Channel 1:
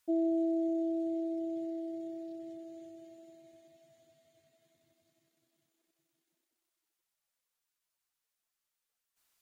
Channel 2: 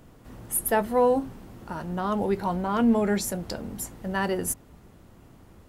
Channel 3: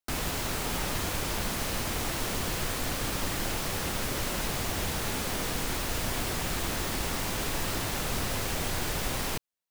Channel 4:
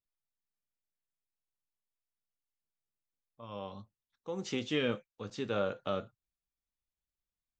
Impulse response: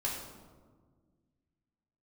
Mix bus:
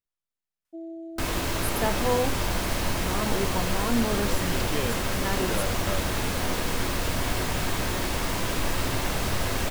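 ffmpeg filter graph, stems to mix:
-filter_complex "[0:a]adelay=650,volume=-8.5dB[a];[1:a]agate=range=-19dB:threshold=-49dB:ratio=16:detection=peak,adelay=1100,volume=-5dB[b];[2:a]adelay=1100,volume=1dB,asplit=2[c][d];[d]volume=-7dB[e];[3:a]volume=0.5dB[f];[4:a]atrim=start_sample=2205[g];[e][g]afir=irnorm=-1:irlink=0[h];[a][b][c][f][h]amix=inputs=5:normalize=0,highshelf=f=4.6k:g=-4.5"

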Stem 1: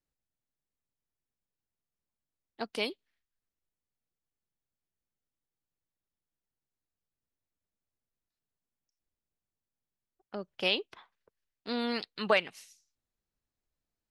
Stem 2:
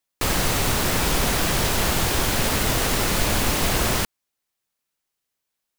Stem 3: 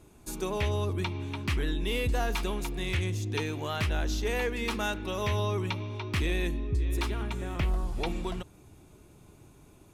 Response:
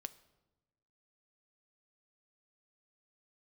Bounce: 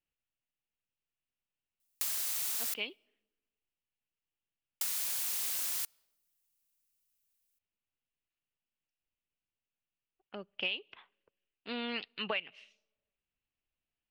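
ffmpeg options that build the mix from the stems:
-filter_complex "[0:a]lowpass=f=2.8k:t=q:w=4.8,volume=-7dB,asplit=2[a][b];[b]volume=-14dB[c];[1:a]aderivative,adelay=1800,volume=-3dB,asplit=3[d][e][f];[d]atrim=end=2.74,asetpts=PTS-STARTPTS,afade=t=out:st=2.736:d=0.004:c=hsin[g];[e]atrim=start=2.74:end=4.81,asetpts=PTS-STARTPTS,volume=0[h];[f]atrim=start=4.81,asetpts=PTS-STARTPTS,afade=t=in:d=0.004:c=hsin[i];[g][h][i]concat=n=3:v=0:a=1,asplit=2[j][k];[k]volume=-11dB[l];[3:a]atrim=start_sample=2205[m];[c][l]amix=inputs=2:normalize=0[n];[n][m]afir=irnorm=-1:irlink=0[o];[a][j][o]amix=inputs=3:normalize=0,acompressor=threshold=-32dB:ratio=6"

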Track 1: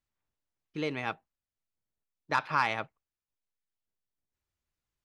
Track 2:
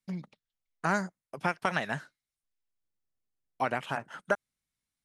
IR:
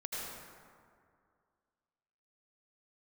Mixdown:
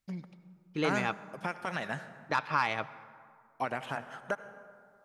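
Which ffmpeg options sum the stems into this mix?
-filter_complex "[0:a]volume=2dB,asplit=2[a][b];[b]volume=-20.5dB[c];[1:a]alimiter=limit=-17.5dB:level=0:latency=1,volume=-4dB,asplit=2[d][e];[e]volume=-12dB[f];[2:a]atrim=start_sample=2205[g];[c][f]amix=inputs=2:normalize=0[h];[h][g]afir=irnorm=-1:irlink=0[i];[a][d][i]amix=inputs=3:normalize=0,alimiter=limit=-15.5dB:level=0:latency=1:release=337"

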